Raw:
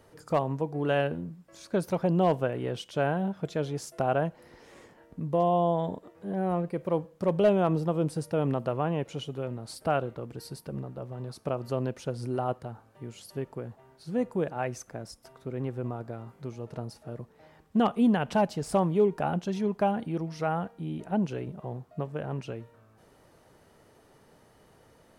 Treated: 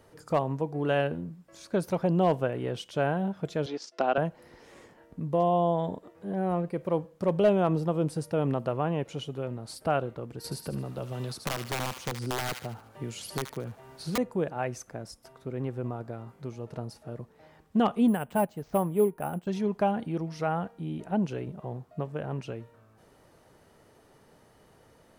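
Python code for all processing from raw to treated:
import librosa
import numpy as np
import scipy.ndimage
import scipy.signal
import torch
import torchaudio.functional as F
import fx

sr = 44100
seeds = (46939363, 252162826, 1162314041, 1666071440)

y = fx.chain(x, sr, fx.cheby1_bandpass(low_hz=250.0, high_hz=5000.0, order=3),
    fx.high_shelf(hz=2600.0, db=10.0),
    fx.transient(attack_db=2, sustain_db=-10), at=(3.66, 4.18))
y = fx.chain(y, sr, fx.overflow_wrap(gain_db=23.5),
    fx.echo_wet_highpass(ms=74, feedback_pct=37, hz=1400.0, wet_db=-7),
    fx.band_squash(depth_pct=70), at=(10.44, 14.18))
y = fx.chain(y, sr, fx.lowpass(hz=3300.0, slope=12),
    fx.resample_bad(factor=4, down='none', up='hold'),
    fx.upward_expand(threshold_db=-38.0, expansion=1.5), at=(18.08, 19.47))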